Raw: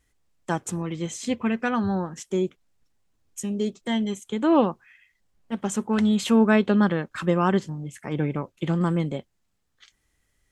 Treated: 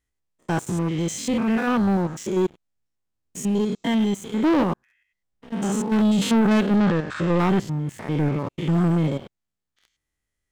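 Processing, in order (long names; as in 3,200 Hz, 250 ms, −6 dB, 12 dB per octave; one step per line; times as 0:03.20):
spectrum averaged block by block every 100 ms
leveller curve on the samples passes 3
0:06.76–0:07.39: low-pass filter 7,900 Hz 24 dB per octave
level −4 dB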